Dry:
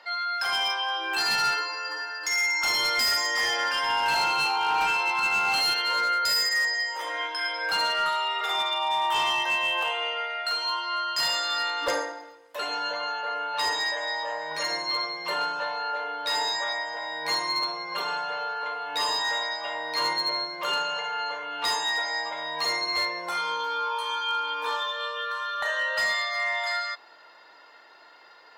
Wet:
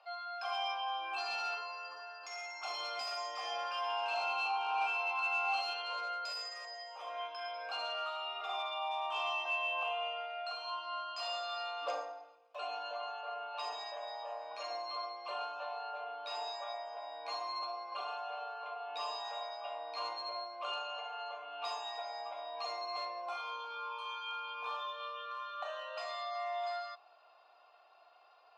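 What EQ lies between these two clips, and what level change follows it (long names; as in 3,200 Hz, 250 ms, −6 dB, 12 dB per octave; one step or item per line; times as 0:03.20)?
formant filter a
high-pass filter 200 Hz 6 dB per octave
parametric band 5,500 Hz +7.5 dB 1.5 octaves
0.0 dB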